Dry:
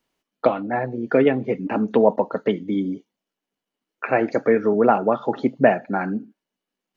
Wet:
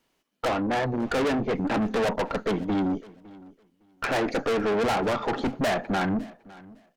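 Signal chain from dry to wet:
tube saturation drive 29 dB, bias 0.5
repeating echo 558 ms, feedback 18%, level −21.5 dB
level +6.5 dB

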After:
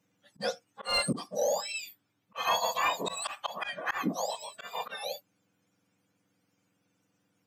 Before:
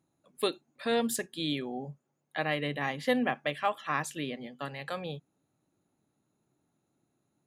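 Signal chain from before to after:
frequency axis turned over on the octave scale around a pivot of 1,400 Hz
mid-hump overdrive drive 15 dB, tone 2,200 Hz, clips at −15 dBFS
volume swells 157 ms
level +2 dB

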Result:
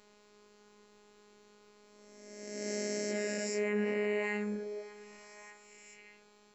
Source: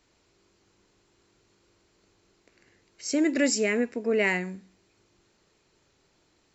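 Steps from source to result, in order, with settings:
peak hold with a rise ahead of every peak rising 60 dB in 1.62 s
phases set to zero 208 Hz
downward compressor 3 to 1, threshold −32 dBFS, peak gain reduction 11.5 dB
parametric band 590 Hz +7 dB 2.7 octaves
notch filter 650 Hz, Q 12
echo through a band-pass that steps 598 ms, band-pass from 450 Hz, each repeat 1.4 octaves, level −11.5 dB
brickwall limiter −22 dBFS, peak gain reduction 7 dB

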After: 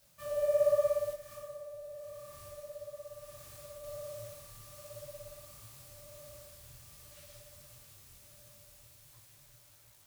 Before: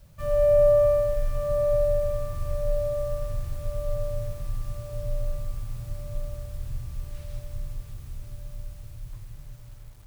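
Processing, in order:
high-pass filter 480 Hz 6 dB per octave
high-shelf EQ 3,000 Hz +9.5 dB
0:01.13–0:03.84: downward compressor 6 to 1, threshold −37 dBFS, peak gain reduction 12.5 dB
micro pitch shift up and down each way 49 cents
level −4 dB

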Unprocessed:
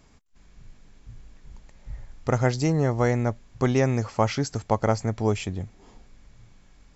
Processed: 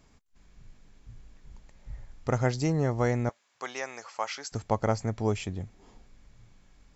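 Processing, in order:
0:03.29–0:04.52: high-pass filter 870 Hz 12 dB per octave
level −4 dB

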